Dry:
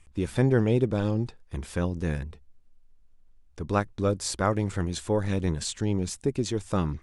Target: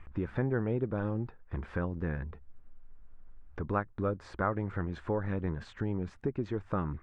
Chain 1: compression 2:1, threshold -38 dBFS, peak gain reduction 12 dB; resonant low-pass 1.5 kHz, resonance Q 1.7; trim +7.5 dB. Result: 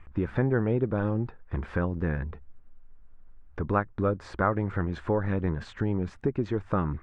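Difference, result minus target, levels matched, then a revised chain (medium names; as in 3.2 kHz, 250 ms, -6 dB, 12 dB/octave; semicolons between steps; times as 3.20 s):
compression: peak gain reduction -5.5 dB
compression 2:1, threshold -49 dBFS, peak gain reduction 17.5 dB; resonant low-pass 1.5 kHz, resonance Q 1.7; trim +7.5 dB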